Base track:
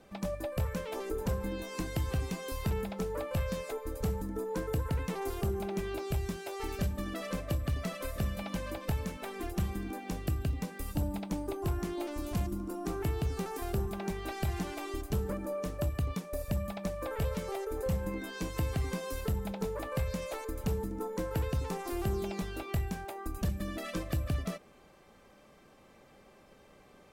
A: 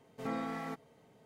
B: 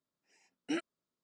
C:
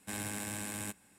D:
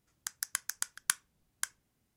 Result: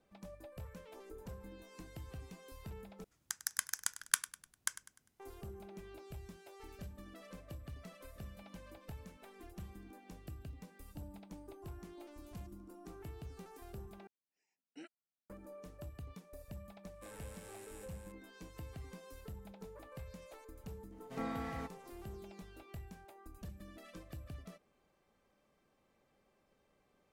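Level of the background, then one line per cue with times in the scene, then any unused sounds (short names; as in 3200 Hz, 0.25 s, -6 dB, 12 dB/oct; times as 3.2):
base track -16 dB
3.04 replace with D -1.5 dB + feedback echo 0.1 s, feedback 40%, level -15 dB
14.07 replace with B -17.5 dB
16.94 add C -17.5 dB + echo 0.418 s -5 dB
20.92 add A -3 dB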